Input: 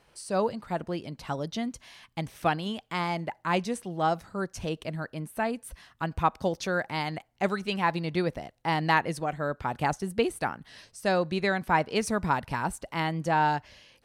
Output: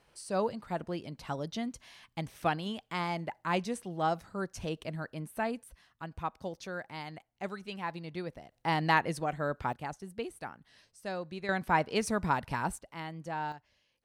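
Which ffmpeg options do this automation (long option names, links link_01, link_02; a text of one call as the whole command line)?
ffmpeg -i in.wav -af "asetnsamples=nb_out_samples=441:pad=0,asendcmd='5.64 volume volume -11dB;8.52 volume volume -2.5dB;9.73 volume volume -12dB;11.49 volume volume -3dB;12.79 volume volume -12dB;13.52 volume volume -19dB',volume=-4dB" out.wav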